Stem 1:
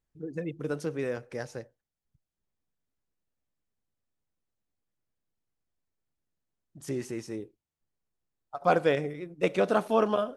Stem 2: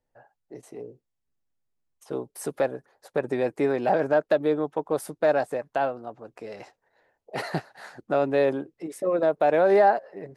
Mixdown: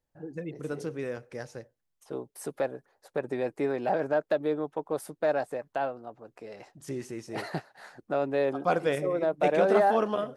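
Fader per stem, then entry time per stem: -2.5, -5.0 dB; 0.00, 0.00 s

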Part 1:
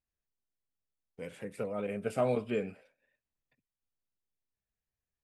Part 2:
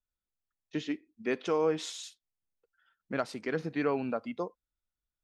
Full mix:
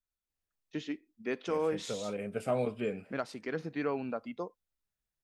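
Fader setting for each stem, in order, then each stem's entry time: -1.5, -3.5 dB; 0.30, 0.00 s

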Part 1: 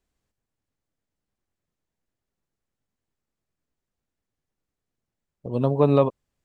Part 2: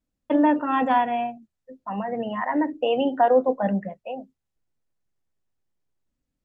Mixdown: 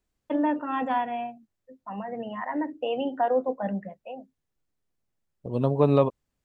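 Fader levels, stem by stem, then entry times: -2.0, -6.0 dB; 0.00, 0.00 s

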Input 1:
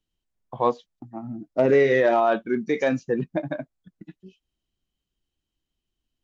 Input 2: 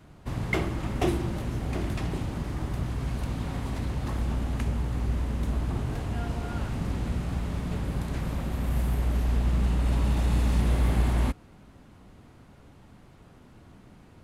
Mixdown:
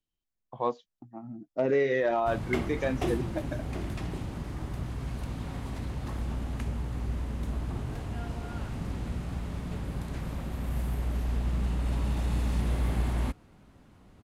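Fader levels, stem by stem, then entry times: -7.5, -4.5 dB; 0.00, 2.00 s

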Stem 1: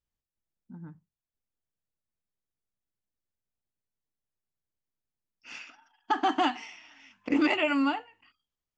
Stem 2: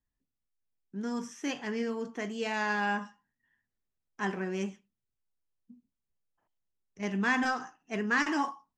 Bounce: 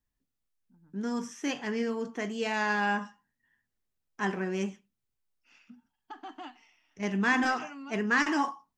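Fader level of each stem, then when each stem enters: -18.0, +2.0 dB; 0.00, 0.00 s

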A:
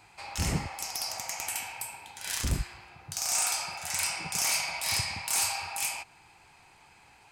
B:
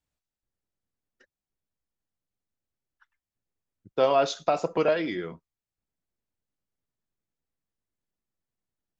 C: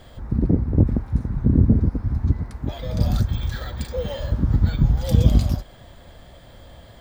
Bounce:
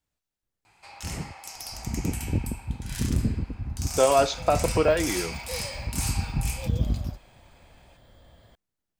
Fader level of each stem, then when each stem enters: -4.5, +2.0, -10.0 dB; 0.65, 0.00, 1.55 s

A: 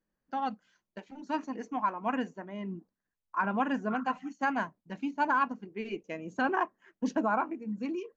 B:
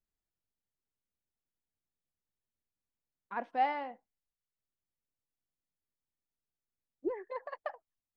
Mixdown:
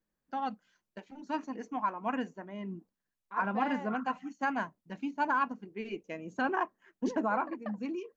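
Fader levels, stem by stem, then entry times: -2.0, -4.0 dB; 0.00, 0.00 s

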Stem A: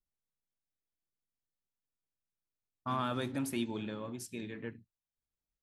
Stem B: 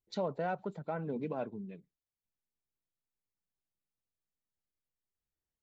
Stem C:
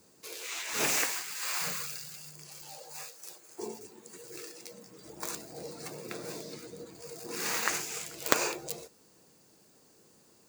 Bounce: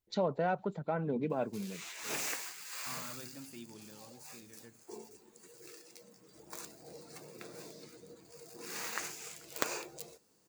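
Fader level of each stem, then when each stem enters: -14.5, +3.0, -8.5 dB; 0.00, 0.00, 1.30 s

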